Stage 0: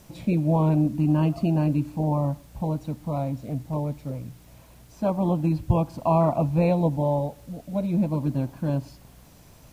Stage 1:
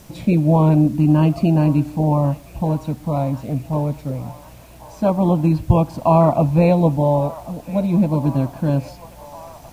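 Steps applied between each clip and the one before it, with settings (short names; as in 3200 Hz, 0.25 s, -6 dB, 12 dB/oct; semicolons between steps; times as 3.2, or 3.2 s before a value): band-limited delay 1.09 s, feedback 68%, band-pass 1400 Hz, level -14.5 dB; gain +7 dB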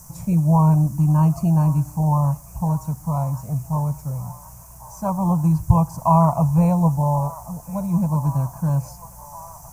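EQ curve 170 Hz 0 dB, 270 Hz -19 dB, 590 Hz -10 dB, 1000 Hz +3 dB, 1700 Hz -10 dB, 3700 Hz -22 dB, 6100 Hz +7 dB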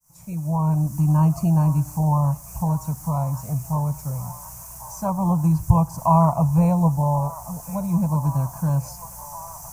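opening faded in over 1.13 s; mismatched tape noise reduction encoder only; gain -1 dB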